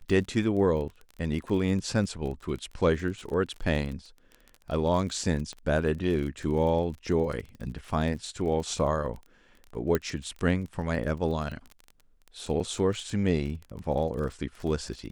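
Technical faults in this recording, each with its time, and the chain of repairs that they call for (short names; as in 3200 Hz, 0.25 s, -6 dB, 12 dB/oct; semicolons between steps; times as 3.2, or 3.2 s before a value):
crackle 24/s -35 dBFS
5.53 pop -27 dBFS
9.95 pop -13 dBFS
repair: de-click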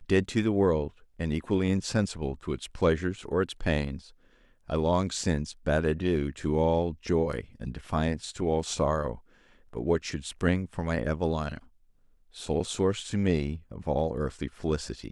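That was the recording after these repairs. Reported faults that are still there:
5.53 pop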